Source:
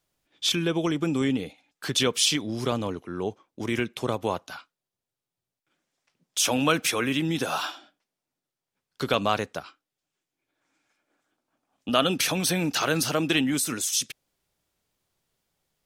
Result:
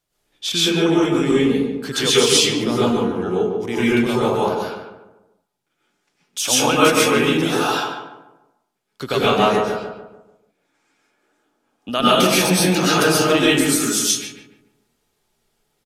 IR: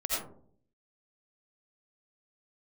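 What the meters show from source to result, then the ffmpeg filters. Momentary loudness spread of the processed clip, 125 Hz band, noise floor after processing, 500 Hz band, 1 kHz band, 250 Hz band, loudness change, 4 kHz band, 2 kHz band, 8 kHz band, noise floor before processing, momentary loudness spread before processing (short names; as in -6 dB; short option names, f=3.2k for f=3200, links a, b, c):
12 LU, +7.0 dB, -72 dBFS, +11.0 dB, +10.0 dB, +9.0 dB, +8.5 dB, +8.0 dB, +8.5 dB, +8.0 dB, under -85 dBFS, 13 LU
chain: -filter_complex "[0:a]asplit=2[a][b];[b]adelay=146,lowpass=f=1.4k:p=1,volume=-4dB,asplit=2[c][d];[d]adelay=146,lowpass=f=1.4k:p=1,volume=0.44,asplit=2[e][f];[f]adelay=146,lowpass=f=1.4k:p=1,volume=0.44,asplit=2[g][h];[h]adelay=146,lowpass=f=1.4k:p=1,volume=0.44,asplit=2[i][j];[j]adelay=146,lowpass=f=1.4k:p=1,volume=0.44,asplit=2[k][l];[l]adelay=146,lowpass=f=1.4k:p=1,volume=0.44[m];[a][c][e][g][i][k][m]amix=inputs=7:normalize=0[n];[1:a]atrim=start_sample=2205,atrim=end_sample=6174,asetrate=29106,aresample=44100[o];[n][o]afir=irnorm=-1:irlink=0,volume=-1dB"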